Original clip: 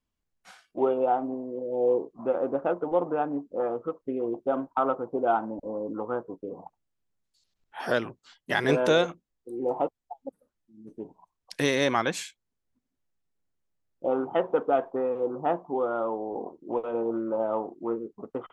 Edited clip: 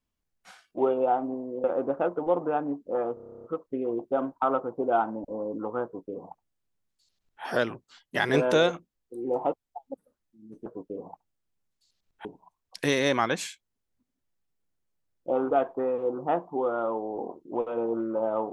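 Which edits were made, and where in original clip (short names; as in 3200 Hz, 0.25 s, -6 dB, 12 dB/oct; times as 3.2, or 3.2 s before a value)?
1.64–2.29 cut
3.79 stutter 0.03 s, 11 plays
6.19–7.78 copy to 11.01
14.27–14.68 cut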